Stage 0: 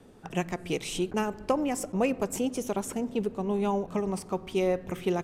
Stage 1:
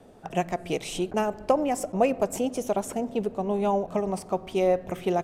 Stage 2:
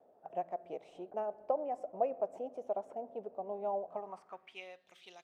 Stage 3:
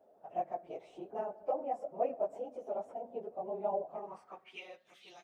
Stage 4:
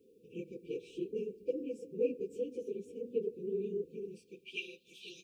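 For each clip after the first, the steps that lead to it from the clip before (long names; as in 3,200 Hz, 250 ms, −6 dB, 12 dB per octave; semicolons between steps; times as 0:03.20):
parametric band 660 Hz +10 dB 0.6 octaves
band-pass filter sweep 650 Hz → 3,900 Hz, 0:03.86–0:04.82; level −7.5 dB
random phases in long frames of 50 ms
linear-phase brick-wall band-stop 510–2,300 Hz; level +8 dB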